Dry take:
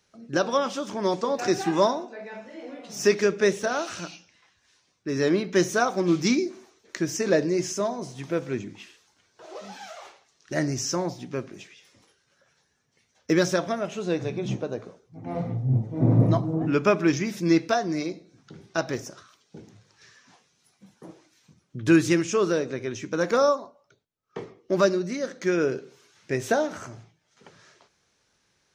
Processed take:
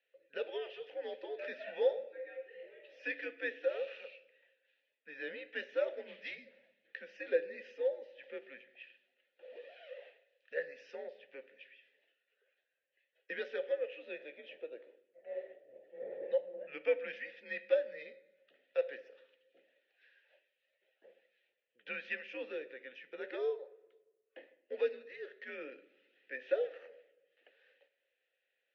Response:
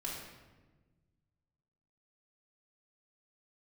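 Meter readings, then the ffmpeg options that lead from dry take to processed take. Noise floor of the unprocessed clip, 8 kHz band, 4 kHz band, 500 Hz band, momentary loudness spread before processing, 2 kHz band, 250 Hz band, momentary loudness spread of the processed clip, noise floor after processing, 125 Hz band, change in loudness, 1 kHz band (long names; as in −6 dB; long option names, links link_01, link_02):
−70 dBFS, below −40 dB, −18.0 dB, −11.5 dB, 19 LU, −11.0 dB, −31.0 dB, 19 LU, −84 dBFS, below −40 dB, −14.5 dB, −25.0 dB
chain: -filter_complex "[0:a]asplit=2[link_01][link_02];[1:a]atrim=start_sample=2205,lowshelf=frequency=330:gain=8.5[link_03];[link_02][link_03]afir=irnorm=-1:irlink=0,volume=-17dB[link_04];[link_01][link_04]amix=inputs=2:normalize=0,highpass=frequency=540:width_type=q:width=0.5412,highpass=frequency=540:width_type=q:width=1.307,lowpass=frequency=3500:width_type=q:width=0.5176,lowpass=frequency=3500:width_type=q:width=0.7071,lowpass=frequency=3500:width_type=q:width=1.932,afreqshift=-130,crystalizer=i=1.5:c=0,asplit=3[link_05][link_06][link_07];[link_05]bandpass=frequency=530:width_type=q:width=8,volume=0dB[link_08];[link_06]bandpass=frequency=1840:width_type=q:width=8,volume=-6dB[link_09];[link_07]bandpass=frequency=2480:width_type=q:width=8,volume=-9dB[link_10];[link_08][link_09][link_10]amix=inputs=3:normalize=0,crystalizer=i=3:c=0,volume=-3dB"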